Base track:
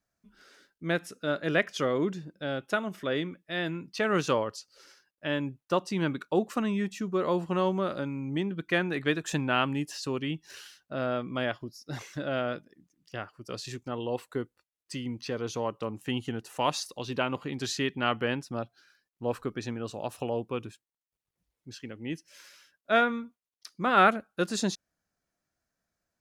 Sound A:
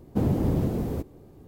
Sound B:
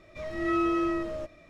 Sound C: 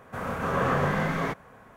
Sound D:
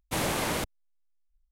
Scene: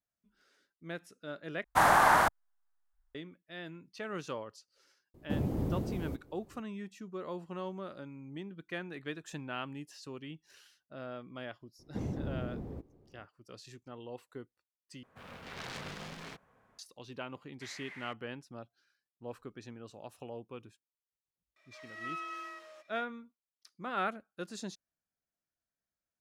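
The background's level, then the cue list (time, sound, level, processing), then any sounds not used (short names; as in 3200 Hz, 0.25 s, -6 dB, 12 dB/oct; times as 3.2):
base track -13 dB
1.64 replace with D -4.5 dB + band shelf 1100 Hz +16 dB
5.14 add A -9 dB
11.79 add A -13 dB + LPF 1700 Hz 6 dB/oct
15.03 replace with C -16.5 dB + self-modulated delay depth 0.85 ms
17.49 add D -8 dB + band-pass 2000 Hz, Q 6.4
21.56 add B -7 dB + HPF 1200 Hz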